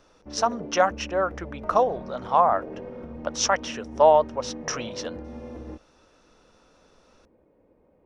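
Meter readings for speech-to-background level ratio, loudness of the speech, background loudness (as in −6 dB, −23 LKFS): 15.0 dB, −24.0 LKFS, −39.0 LKFS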